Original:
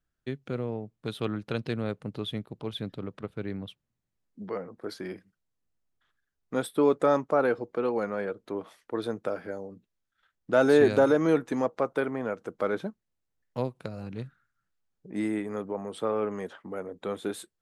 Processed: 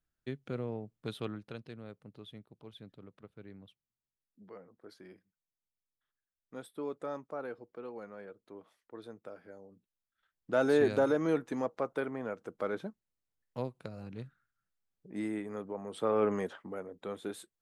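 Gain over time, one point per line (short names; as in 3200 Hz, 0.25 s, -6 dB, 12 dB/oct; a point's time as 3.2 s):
1.13 s -5 dB
1.68 s -16 dB
9.4 s -16 dB
10.52 s -6.5 dB
15.81 s -6.5 dB
16.31 s +2.5 dB
16.89 s -7 dB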